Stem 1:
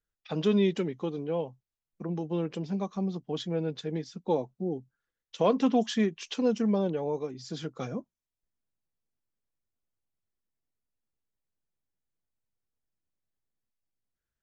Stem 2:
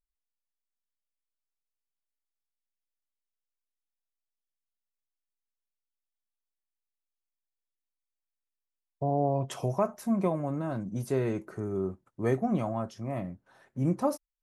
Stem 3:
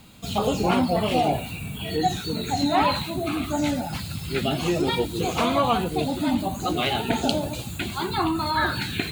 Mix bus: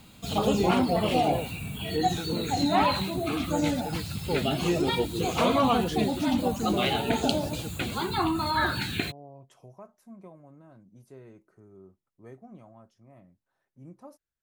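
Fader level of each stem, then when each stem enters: -4.0 dB, -20.0 dB, -2.5 dB; 0.00 s, 0.00 s, 0.00 s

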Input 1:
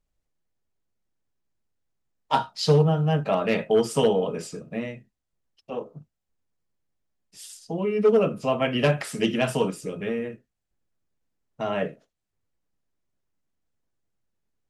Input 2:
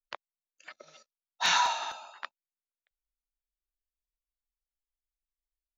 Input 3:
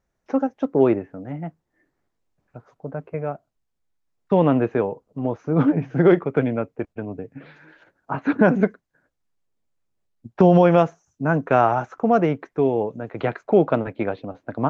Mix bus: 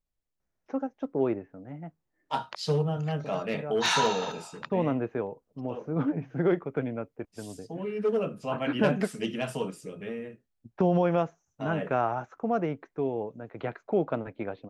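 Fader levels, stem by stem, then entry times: -8.0 dB, -0.5 dB, -10.0 dB; 0.00 s, 2.40 s, 0.40 s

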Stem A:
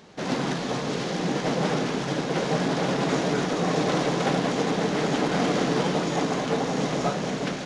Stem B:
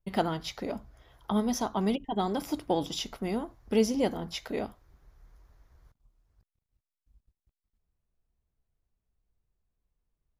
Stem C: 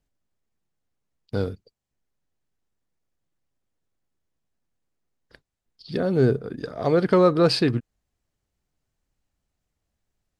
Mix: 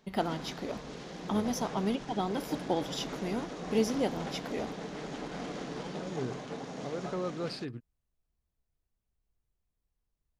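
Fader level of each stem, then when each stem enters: -15.5 dB, -3.0 dB, -18.0 dB; 0.00 s, 0.00 s, 0.00 s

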